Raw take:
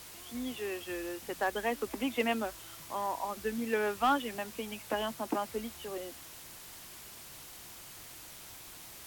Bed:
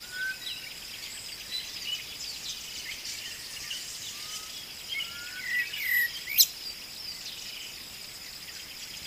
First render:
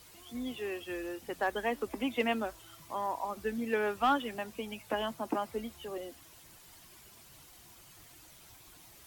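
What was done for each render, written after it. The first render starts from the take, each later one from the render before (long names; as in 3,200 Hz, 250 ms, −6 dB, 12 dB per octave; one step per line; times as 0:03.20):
broadband denoise 9 dB, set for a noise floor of −50 dBFS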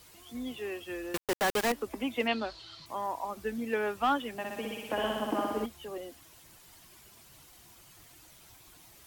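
0:01.14–0:01.72: log-companded quantiser 2 bits
0:02.27–0:02.86: low-pass with resonance 4,300 Hz, resonance Q 9.8
0:04.34–0:05.66: flutter between parallel walls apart 10.4 metres, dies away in 1.4 s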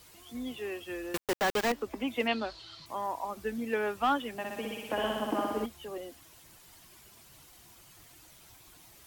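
0:01.32–0:02.08: parametric band 11,000 Hz −8 dB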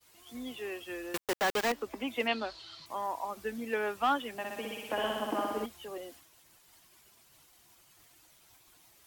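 downward expander −50 dBFS
low-shelf EQ 260 Hz −7 dB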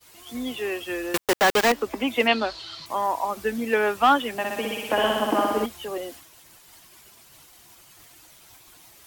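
level +10.5 dB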